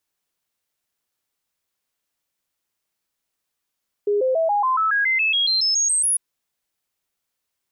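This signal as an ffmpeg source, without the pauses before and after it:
ffmpeg -f lavfi -i "aevalsrc='0.15*clip(min(mod(t,0.14),0.14-mod(t,0.14))/0.005,0,1)*sin(2*PI*411*pow(2,floor(t/0.14)/3)*mod(t,0.14))':duration=2.1:sample_rate=44100" out.wav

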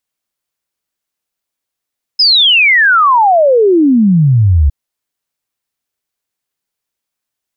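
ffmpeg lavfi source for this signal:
ffmpeg -f lavfi -i "aevalsrc='0.562*clip(min(t,2.51-t)/0.01,0,1)*sin(2*PI*5200*2.51/log(67/5200)*(exp(log(67/5200)*t/2.51)-1))':duration=2.51:sample_rate=44100" out.wav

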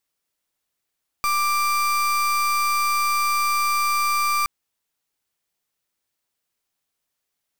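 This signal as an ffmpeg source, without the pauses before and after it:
ffmpeg -f lavfi -i "aevalsrc='0.0891*(2*lt(mod(1180*t,1),0.35)-1)':duration=3.22:sample_rate=44100" out.wav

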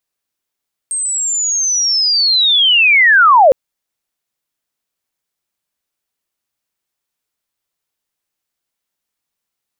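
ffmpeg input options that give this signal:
ffmpeg -f lavfi -i "aevalsrc='pow(10,(-16+12.5*t/2.61)/20)*sin(2*PI*(8500*t-8010*t*t/(2*2.61)))':duration=2.61:sample_rate=44100" out.wav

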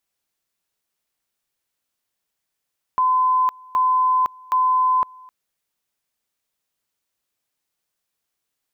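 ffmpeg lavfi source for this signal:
ffmpeg -f lavfi -i "aevalsrc='pow(10,(-14.5-26*gte(mod(t,0.77),0.51))/20)*sin(2*PI*1020*t)':duration=2.31:sample_rate=44100" out.wav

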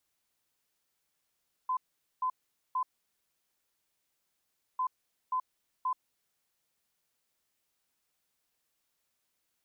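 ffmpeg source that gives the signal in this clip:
ffmpeg -f lavfi -i "aevalsrc='0.0422*sin(2*PI*1020*t)*clip(min(mod(mod(t,3.1),0.53),0.08-mod(mod(t,3.1),0.53))/0.005,0,1)*lt(mod(t,3.1),1.59)':duration=6.2:sample_rate=44100" out.wav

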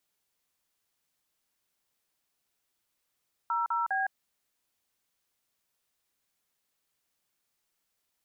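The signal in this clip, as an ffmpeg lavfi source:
ffmpeg -f lavfi -i "aevalsrc='0.0355*clip(min(mod(t,0.203),0.161-mod(t,0.203))/0.002,0,1)*(eq(floor(t/0.203),0)*(sin(2*PI*941*mod(t,0.203))+sin(2*PI*1336*mod(t,0.203)))+eq(floor(t/0.203),1)*(sin(2*PI*941*mod(t,0.203))+sin(2*PI*1336*mod(t,0.203)))+eq(floor(t/0.203),2)*(sin(2*PI*770*mod(t,0.203))+sin(2*PI*1633*mod(t,0.203))))':duration=0.609:sample_rate=44100" out.wav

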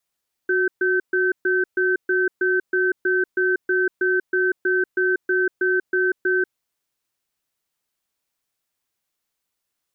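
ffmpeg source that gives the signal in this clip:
ffmpeg -f lavfi -i "aevalsrc='0.106*(sin(2*PI*369*t)+sin(2*PI*1540*t))*clip(min(mod(t,0.32),0.19-mod(t,0.32))/0.005,0,1)':duration=5.98:sample_rate=44100" out.wav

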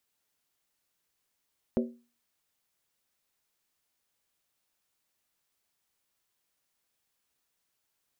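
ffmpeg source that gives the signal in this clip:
ffmpeg -f lavfi -i "aevalsrc='0.0794*pow(10,-3*t/0.35)*sin(2*PI*238*t)+0.0501*pow(10,-3*t/0.277)*sin(2*PI*379.4*t)+0.0316*pow(10,-3*t/0.239)*sin(2*PI*508.4*t)+0.02*pow(10,-3*t/0.231)*sin(2*PI*546.4*t)+0.0126*pow(10,-3*t/0.215)*sin(2*PI*631.4*t)':duration=0.63:sample_rate=44100" out.wav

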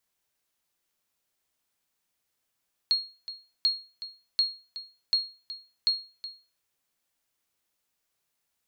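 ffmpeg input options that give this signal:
ffmpeg -f lavfi -i "aevalsrc='0.15*(sin(2*PI*4280*mod(t,0.74))*exp(-6.91*mod(t,0.74)/0.34)+0.188*sin(2*PI*4280*max(mod(t,0.74)-0.37,0))*exp(-6.91*max(mod(t,0.74)-0.37,0)/0.34))':duration=3.7:sample_rate=44100" out.wav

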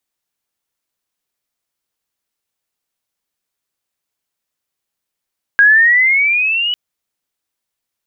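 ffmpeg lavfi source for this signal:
ffmpeg -f lavfi -i "aevalsrc='pow(10,(-4.5-10*t/1.15)/20)*sin(2*PI*1620*1.15/(10.5*log(2)/12)*(exp(10.5*log(2)/12*t/1.15)-1))':duration=1.15:sample_rate=44100" out.wav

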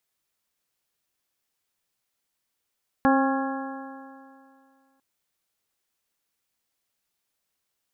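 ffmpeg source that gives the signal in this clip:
ffmpeg -f lavfi -i "aevalsrc='0.126*pow(10,-3*t/2.3)*sin(2*PI*267.31*t)+0.0631*pow(10,-3*t/2.3)*sin(2*PI*536.45*t)+0.0891*pow(10,-3*t/2.3)*sin(2*PI*809.25*t)+0.0562*pow(10,-3*t/2.3)*sin(2*PI*1087.47*t)+0.0335*pow(10,-3*t/2.3)*sin(2*PI*1372.84*t)+0.0422*pow(10,-3*t/2.3)*sin(2*PI*1667*t)':duration=1.95:sample_rate=44100" out.wav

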